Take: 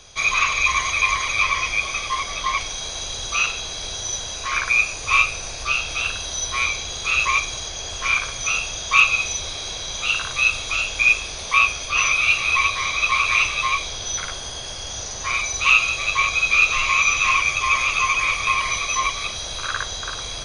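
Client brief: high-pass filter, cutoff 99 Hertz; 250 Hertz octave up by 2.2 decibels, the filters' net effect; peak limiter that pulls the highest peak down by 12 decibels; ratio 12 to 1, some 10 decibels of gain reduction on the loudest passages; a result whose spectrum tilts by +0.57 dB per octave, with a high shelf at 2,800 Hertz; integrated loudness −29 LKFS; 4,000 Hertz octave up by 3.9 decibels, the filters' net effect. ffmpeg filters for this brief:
ffmpeg -i in.wav -af "highpass=99,equalizer=frequency=250:width_type=o:gain=3.5,highshelf=frequency=2800:gain=-3,equalizer=frequency=4000:width_type=o:gain=7,acompressor=threshold=-19dB:ratio=12,volume=-1.5dB,alimiter=limit=-22.5dB:level=0:latency=1" out.wav

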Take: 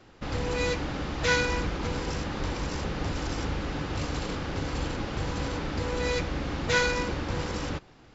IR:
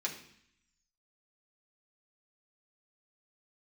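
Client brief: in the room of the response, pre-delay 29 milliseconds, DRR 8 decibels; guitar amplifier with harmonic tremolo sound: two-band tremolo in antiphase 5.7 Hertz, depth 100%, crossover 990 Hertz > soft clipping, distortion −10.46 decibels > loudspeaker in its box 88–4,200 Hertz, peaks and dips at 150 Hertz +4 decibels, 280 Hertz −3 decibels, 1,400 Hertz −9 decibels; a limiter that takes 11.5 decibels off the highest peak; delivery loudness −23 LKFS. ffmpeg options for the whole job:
-filter_complex "[0:a]alimiter=limit=-22.5dB:level=0:latency=1,asplit=2[link_01][link_02];[1:a]atrim=start_sample=2205,adelay=29[link_03];[link_02][link_03]afir=irnorm=-1:irlink=0,volume=-11dB[link_04];[link_01][link_04]amix=inputs=2:normalize=0,acrossover=split=990[link_05][link_06];[link_05]aeval=exprs='val(0)*(1-1/2+1/2*cos(2*PI*5.7*n/s))':channel_layout=same[link_07];[link_06]aeval=exprs='val(0)*(1-1/2-1/2*cos(2*PI*5.7*n/s))':channel_layout=same[link_08];[link_07][link_08]amix=inputs=2:normalize=0,asoftclip=threshold=-34dB,highpass=88,equalizer=frequency=150:width_type=q:width=4:gain=4,equalizer=frequency=280:width_type=q:width=4:gain=-3,equalizer=frequency=1400:width_type=q:width=4:gain=-9,lowpass=frequency=4200:width=0.5412,lowpass=frequency=4200:width=1.3066,volume=18.5dB"

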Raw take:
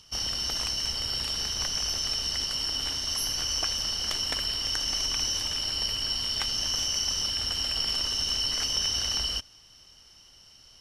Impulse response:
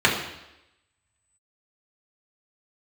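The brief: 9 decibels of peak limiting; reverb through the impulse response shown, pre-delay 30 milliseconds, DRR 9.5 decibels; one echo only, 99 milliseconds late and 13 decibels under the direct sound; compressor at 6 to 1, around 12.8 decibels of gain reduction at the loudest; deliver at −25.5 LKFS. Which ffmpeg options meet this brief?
-filter_complex "[0:a]acompressor=threshold=-39dB:ratio=6,alimiter=level_in=8.5dB:limit=-24dB:level=0:latency=1,volume=-8.5dB,aecho=1:1:99:0.224,asplit=2[link_01][link_02];[1:a]atrim=start_sample=2205,adelay=30[link_03];[link_02][link_03]afir=irnorm=-1:irlink=0,volume=-29.5dB[link_04];[link_01][link_04]amix=inputs=2:normalize=0,volume=13.5dB"

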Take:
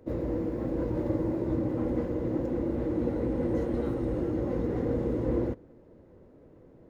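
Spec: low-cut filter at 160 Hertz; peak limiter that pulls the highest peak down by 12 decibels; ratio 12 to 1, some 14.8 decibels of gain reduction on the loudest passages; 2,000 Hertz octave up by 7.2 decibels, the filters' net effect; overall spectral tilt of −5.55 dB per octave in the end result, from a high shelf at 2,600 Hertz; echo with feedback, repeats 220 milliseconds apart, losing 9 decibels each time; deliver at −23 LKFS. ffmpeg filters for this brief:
ffmpeg -i in.wav -af "highpass=160,equalizer=frequency=2000:width_type=o:gain=5.5,highshelf=frequency=2600:gain=8,acompressor=threshold=-40dB:ratio=12,alimiter=level_in=18.5dB:limit=-24dB:level=0:latency=1,volume=-18.5dB,aecho=1:1:220|440|660|880:0.355|0.124|0.0435|0.0152,volume=27dB" out.wav

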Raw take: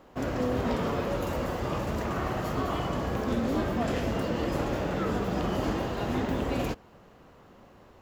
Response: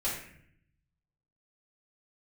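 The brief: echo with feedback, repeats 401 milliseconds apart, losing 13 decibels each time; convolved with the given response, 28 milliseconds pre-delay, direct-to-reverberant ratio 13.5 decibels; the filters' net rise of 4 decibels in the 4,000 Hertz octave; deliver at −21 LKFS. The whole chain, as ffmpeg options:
-filter_complex "[0:a]equalizer=frequency=4000:width_type=o:gain=5.5,aecho=1:1:401|802|1203:0.224|0.0493|0.0108,asplit=2[link_01][link_02];[1:a]atrim=start_sample=2205,adelay=28[link_03];[link_02][link_03]afir=irnorm=-1:irlink=0,volume=-19.5dB[link_04];[link_01][link_04]amix=inputs=2:normalize=0,volume=8.5dB"

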